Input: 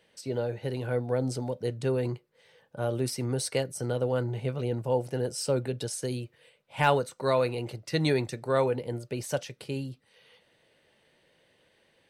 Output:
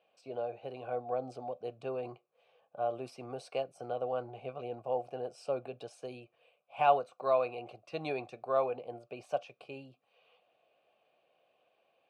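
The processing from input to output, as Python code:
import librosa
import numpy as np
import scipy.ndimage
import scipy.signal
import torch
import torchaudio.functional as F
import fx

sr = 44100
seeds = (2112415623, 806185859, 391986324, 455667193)

y = fx.vowel_filter(x, sr, vowel='a')
y = fx.low_shelf(y, sr, hz=280.0, db=5.0)
y = F.gain(torch.from_numpy(y), 5.5).numpy()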